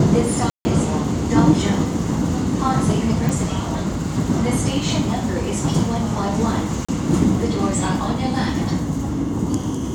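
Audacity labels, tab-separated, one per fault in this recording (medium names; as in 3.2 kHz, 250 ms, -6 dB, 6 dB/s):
0.500000	0.650000	dropout 150 ms
3.290000	3.290000	pop
6.850000	6.880000	dropout 35 ms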